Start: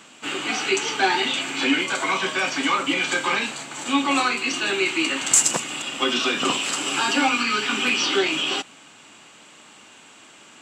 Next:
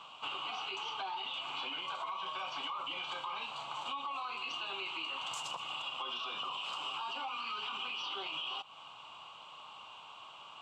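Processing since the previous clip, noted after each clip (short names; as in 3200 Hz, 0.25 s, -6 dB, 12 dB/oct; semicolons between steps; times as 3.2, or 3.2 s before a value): EQ curve 130 Hz 0 dB, 270 Hz -14 dB, 1100 Hz +14 dB, 1800 Hz -14 dB, 2900 Hz +8 dB, 7800 Hz -16 dB, 14000 Hz -10 dB; limiter -13.5 dBFS, peak gain reduction 11 dB; compressor 5:1, threshold -30 dBFS, peak gain reduction 11 dB; gain -8 dB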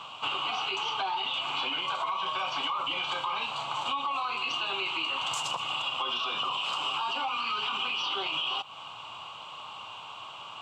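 bell 110 Hz +6.5 dB 0.59 oct; gain +8.5 dB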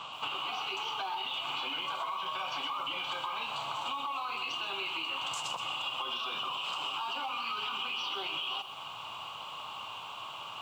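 compressor, threshold -33 dBFS, peak gain reduction 6 dB; lo-fi delay 0.127 s, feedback 35%, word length 9-bit, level -10.5 dB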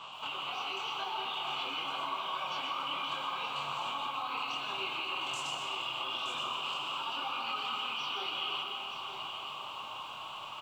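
chorus voices 4, 0.85 Hz, delay 25 ms, depth 3.8 ms; echo 0.921 s -8.5 dB; digital reverb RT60 2.6 s, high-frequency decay 0.45×, pre-delay 0.105 s, DRR 2 dB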